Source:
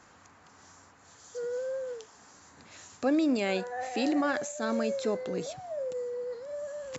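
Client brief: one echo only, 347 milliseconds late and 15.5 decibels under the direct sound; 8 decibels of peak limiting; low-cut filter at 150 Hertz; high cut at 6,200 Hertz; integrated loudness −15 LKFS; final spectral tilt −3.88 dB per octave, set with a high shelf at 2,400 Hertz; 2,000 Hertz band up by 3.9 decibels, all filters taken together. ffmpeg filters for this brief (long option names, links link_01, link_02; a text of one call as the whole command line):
ffmpeg -i in.wav -af "highpass=150,lowpass=6200,equalizer=frequency=2000:width_type=o:gain=3.5,highshelf=frequency=2400:gain=3.5,alimiter=limit=-22.5dB:level=0:latency=1,aecho=1:1:347:0.168,volume=18.5dB" out.wav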